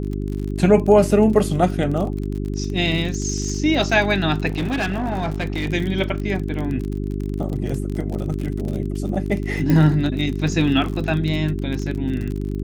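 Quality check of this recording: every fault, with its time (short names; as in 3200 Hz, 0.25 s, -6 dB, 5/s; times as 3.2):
crackle 39/s -26 dBFS
hum 50 Hz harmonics 8 -25 dBFS
4.48–5.7 clipped -18.5 dBFS
9.7 pop -9 dBFS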